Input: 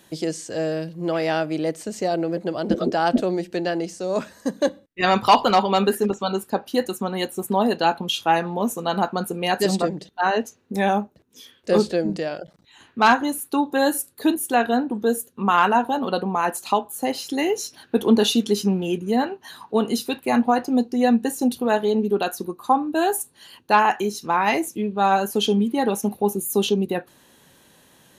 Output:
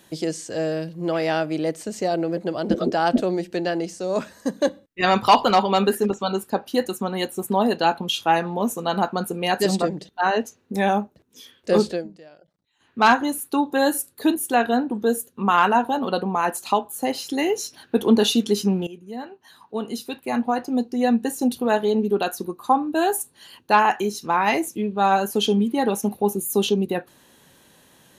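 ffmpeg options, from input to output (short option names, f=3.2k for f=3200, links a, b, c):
-filter_complex "[0:a]asplit=4[a][b][c][d];[a]atrim=end=12.09,asetpts=PTS-STARTPTS,afade=t=out:st=11.87:d=0.22:silence=0.105925[e];[b]atrim=start=12.09:end=12.79,asetpts=PTS-STARTPTS,volume=-19.5dB[f];[c]atrim=start=12.79:end=18.87,asetpts=PTS-STARTPTS,afade=t=in:d=0.22:silence=0.105925,afade=t=out:st=6.076:d=0.004:c=hsin:silence=0.141254[g];[d]atrim=start=18.87,asetpts=PTS-STARTPTS,afade=t=in:d=2.77:silence=0.141254[h];[e][f][g][h]concat=n=4:v=0:a=1"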